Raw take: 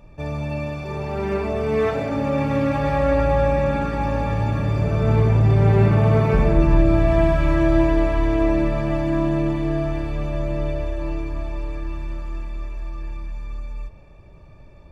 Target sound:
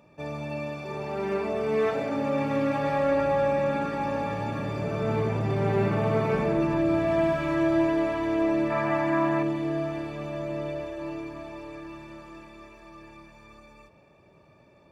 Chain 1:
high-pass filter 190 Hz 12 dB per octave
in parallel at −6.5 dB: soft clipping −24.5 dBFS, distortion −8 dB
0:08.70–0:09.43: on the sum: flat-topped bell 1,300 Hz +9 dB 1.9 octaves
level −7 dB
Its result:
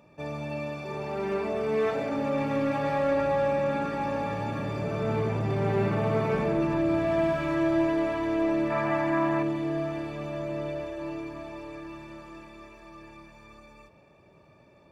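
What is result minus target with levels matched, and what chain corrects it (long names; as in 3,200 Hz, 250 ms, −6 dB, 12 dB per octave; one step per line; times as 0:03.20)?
soft clipping: distortion +13 dB
high-pass filter 190 Hz 12 dB per octave
in parallel at −6.5 dB: soft clipping −13 dBFS, distortion −21 dB
0:08.70–0:09.43: on the sum: flat-topped bell 1,300 Hz +9 dB 1.9 octaves
level −7 dB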